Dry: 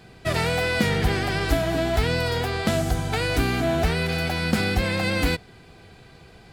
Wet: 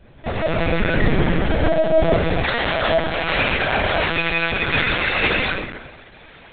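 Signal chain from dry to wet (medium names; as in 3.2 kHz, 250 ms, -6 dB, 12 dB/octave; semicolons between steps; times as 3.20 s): algorithmic reverb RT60 1.2 s, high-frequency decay 0.55×, pre-delay 105 ms, DRR -4.5 dB; LPC vocoder at 8 kHz pitch kept; tilt shelf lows +3 dB, about 630 Hz, from 2.43 s lows -6 dB; trim -1 dB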